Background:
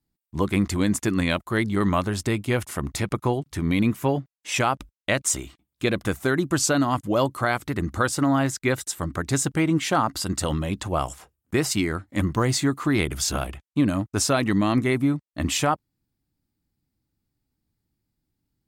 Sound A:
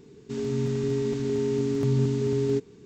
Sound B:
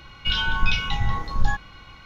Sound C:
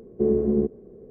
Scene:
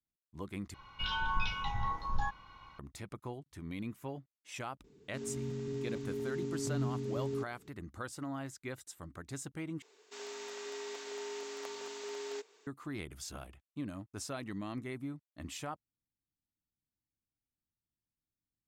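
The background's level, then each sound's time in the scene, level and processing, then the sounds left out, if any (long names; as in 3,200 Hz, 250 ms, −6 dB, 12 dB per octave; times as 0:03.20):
background −19.5 dB
0:00.74: overwrite with B −14 dB + parametric band 980 Hz +13.5 dB 0.56 octaves
0:04.84: mix in A −12 dB
0:09.82: overwrite with A −1.5 dB + high-pass filter 610 Hz 24 dB per octave
not used: C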